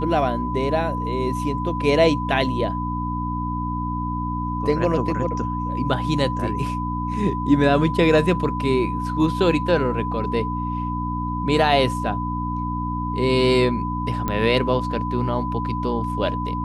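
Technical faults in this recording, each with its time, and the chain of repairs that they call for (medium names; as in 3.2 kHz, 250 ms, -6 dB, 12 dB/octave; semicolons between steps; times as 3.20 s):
hum 60 Hz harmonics 5 -27 dBFS
whine 1 kHz -27 dBFS
14.28 s: pop -11 dBFS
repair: de-click; band-stop 1 kHz, Q 30; de-hum 60 Hz, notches 5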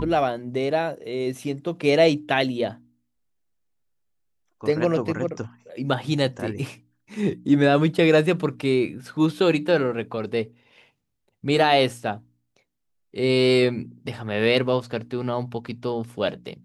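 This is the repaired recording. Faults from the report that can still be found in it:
nothing left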